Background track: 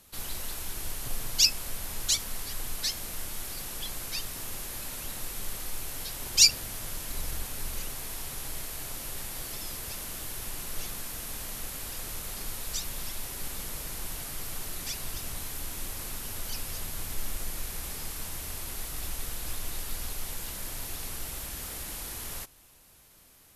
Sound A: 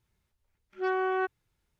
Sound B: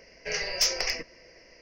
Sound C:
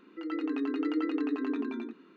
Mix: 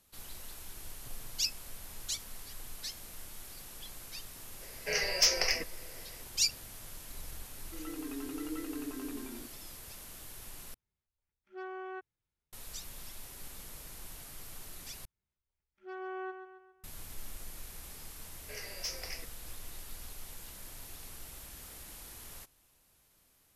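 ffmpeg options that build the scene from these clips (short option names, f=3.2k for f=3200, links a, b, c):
-filter_complex "[2:a]asplit=2[a][b];[1:a]asplit=2[c][d];[0:a]volume=-10.5dB[e];[d]aecho=1:1:136|272|408|544|680:0.376|0.177|0.083|0.039|0.0183[f];[e]asplit=3[g][h][i];[g]atrim=end=10.744[j];[c]atrim=end=1.79,asetpts=PTS-STARTPTS,volume=-14dB[k];[h]atrim=start=12.526:end=15.054[l];[f]atrim=end=1.79,asetpts=PTS-STARTPTS,volume=-15dB[m];[i]atrim=start=16.836[n];[a]atrim=end=1.61,asetpts=PTS-STARTPTS,volume=-1dB,afade=t=in:d=0.004:c=hsin,afade=t=out:st=1.606:d=0.004:c=hsin,adelay=203301S[o];[3:a]atrim=end=2.16,asetpts=PTS-STARTPTS,volume=-9.5dB,afade=t=in:d=0.004:c=hsin,afade=t=out:st=2.156:d=0.004:c=hsin,adelay=7550[p];[b]atrim=end=1.61,asetpts=PTS-STARTPTS,volume=-14.5dB,afade=t=in:d=0.004:c=hsin,afade=t=out:st=1.606:d=0.004:c=hsin,adelay=18230[q];[j][k]acrossfade=d=0.004:c1=hsin:c2=hsin[r];[r][l]acrossfade=d=0.004:c1=hsin:c2=hsin[s];[s][m]acrossfade=d=0.004:c1=hsin:c2=hsin[t];[t][n]acrossfade=d=0.004:c1=hsin:c2=hsin[u];[u][o][p][q]amix=inputs=4:normalize=0"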